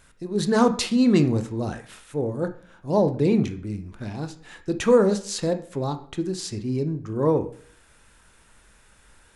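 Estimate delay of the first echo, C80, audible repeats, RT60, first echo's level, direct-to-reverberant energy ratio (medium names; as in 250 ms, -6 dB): no echo, 16.5 dB, no echo, 0.50 s, no echo, 8.0 dB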